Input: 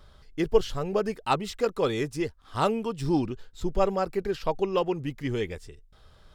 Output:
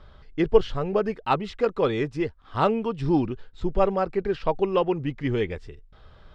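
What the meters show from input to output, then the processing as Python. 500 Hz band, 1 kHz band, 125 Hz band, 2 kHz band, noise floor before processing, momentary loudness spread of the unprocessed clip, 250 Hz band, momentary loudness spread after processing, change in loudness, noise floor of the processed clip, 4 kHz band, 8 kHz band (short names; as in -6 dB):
+3.0 dB, +3.0 dB, +3.0 dB, +2.0 dB, -56 dBFS, 7 LU, +3.0 dB, 8 LU, +3.0 dB, -52 dBFS, -1.0 dB, under -10 dB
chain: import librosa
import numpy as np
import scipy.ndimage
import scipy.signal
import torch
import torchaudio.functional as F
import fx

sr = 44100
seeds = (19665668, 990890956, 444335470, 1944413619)

y = scipy.signal.sosfilt(scipy.signal.butter(2, 3100.0, 'lowpass', fs=sr, output='sos'), x)
y = fx.rider(y, sr, range_db=4, speed_s=2.0)
y = y * 10.0 ** (2.5 / 20.0)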